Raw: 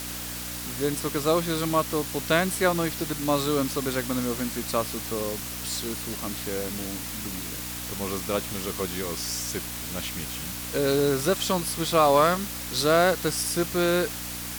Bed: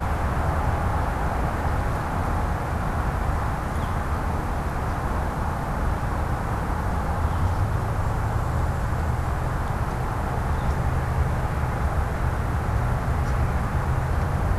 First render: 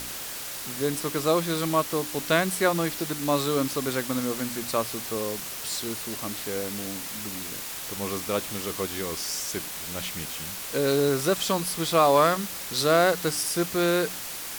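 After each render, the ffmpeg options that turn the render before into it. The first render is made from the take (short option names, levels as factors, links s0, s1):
-af "bandreject=f=60:t=h:w=4,bandreject=f=120:t=h:w=4,bandreject=f=180:t=h:w=4,bandreject=f=240:t=h:w=4,bandreject=f=300:t=h:w=4"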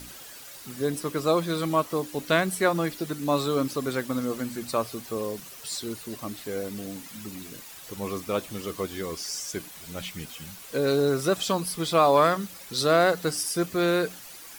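-af "afftdn=nr=11:nf=-36"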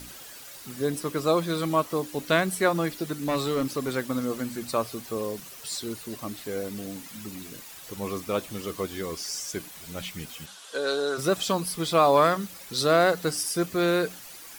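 -filter_complex "[0:a]asettb=1/sr,asplit=3[s0][s1][s2];[s0]atrim=end=3.204[s3];[s1]atrim=start=3.2:end=3.91,asetpts=PTS-STARTPTS,afade=t=in:d=0.004:c=qsin,afade=t=out:st=0.706:d=0.004:c=qsin,asoftclip=type=hard:threshold=0.0841[s4];[s2]atrim=start=3.906[s5];[s3][s4]acrossfade=d=0.004:c1=hsin:c2=qsin[s6];[s6][s5]acrossfade=d=0.004:c1=qsin:c2=hsin,asplit=3[s7][s8][s9];[s7]afade=t=out:st=10.45:d=0.02[s10];[s8]highpass=490,equalizer=f=1500:t=q:w=4:g=5,equalizer=f=2200:t=q:w=4:g=-8,equalizer=f=3400:t=q:w=4:g=7,lowpass=f=9900:w=0.5412,lowpass=f=9900:w=1.3066,afade=t=in:st=10.45:d=0.02,afade=t=out:st=11.17:d=0.02[s11];[s9]afade=t=in:st=11.17:d=0.02[s12];[s10][s11][s12]amix=inputs=3:normalize=0"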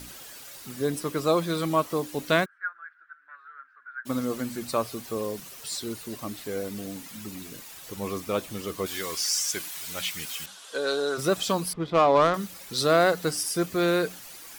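-filter_complex "[0:a]asplit=3[s0][s1][s2];[s0]afade=t=out:st=2.44:d=0.02[s3];[s1]asuperpass=centerf=1500:order=4:qfactor=5.4,afade=t=in:st=2.44:d=0.02,afade=t=out:st=4.05:d=0.02[s4];[s2]afade=t=in:st=4.05:d=0.02[s5];[s3][s4][s5]amix=inputs=3:normalize=0,asettb=1/sr,asplit=3[s6][s7][s8];[s6]atrim=end=8.864[s9];[s7]atrim=start=8.86:end=10.46,asetpts=PTS-STARTPTS,afade=t=in:d=0.004:c=qsin,afade=t=out:st=1.596:d=0.004:c=qsin,tiltshelf=f=680:g=-7.5[s10];[s8]atrim=start=10.456[s11];[s9][s10]acrossfade=d=0.004:c1=hsin:c2=qsin[s12];[s12][s11]acrossfade=d=0.004:c1=qsin:c2=hsin,asettb=1/sr,asplit=3[s13][s14][s15];[s13]atrim=end=11.734[s16];[s14]atrim=start=11.73:end=12.34,asetpts=PTS-STARTPTS,afade=t=in:d=0.004:c=qsin,afade=t=out:st=0.606:d=0.004:c=qsin,adynamicsmooth=sensitivity=1:basefreq=1300[s17];[s15]atrim=start=12.336[s18];[s16][s17]acrossfade=d=0.004:c1=hsin:c2=qsin[s19];[s19][s18]acrossfade=d=0.004:c1=qsin:c2=hsin"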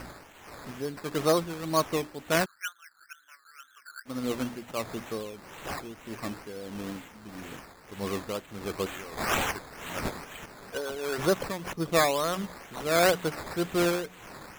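-af "acrusher=samples=12:mix=1:aa=0.000001:lfo=1:lforange=7.2:lforate=2.1,tremolo=f=1.6:d=0.67"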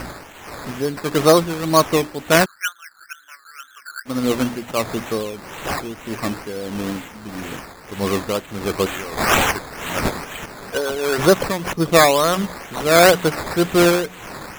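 -af "volume=3.76,alimiter=limit=0.794:level=0:latency=1"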